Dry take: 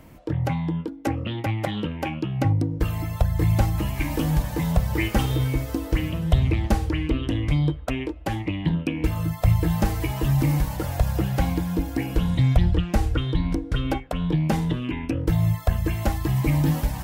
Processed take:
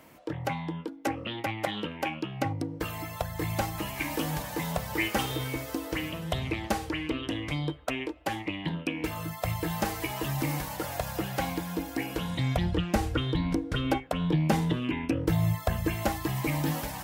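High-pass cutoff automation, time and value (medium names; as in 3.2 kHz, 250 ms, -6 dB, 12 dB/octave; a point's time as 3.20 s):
high-pass 6 dB/octave
12.27 s 520 Hz
12.90 s 180 Hz
15.82 s 180 Hz
16.46 s 450 Hz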